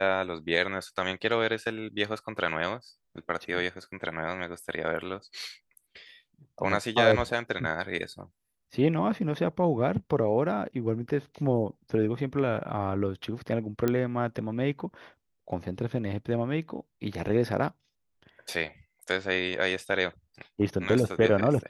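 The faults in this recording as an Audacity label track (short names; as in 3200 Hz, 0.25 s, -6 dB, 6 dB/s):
13.880000	13.880000	pop -13 dBFS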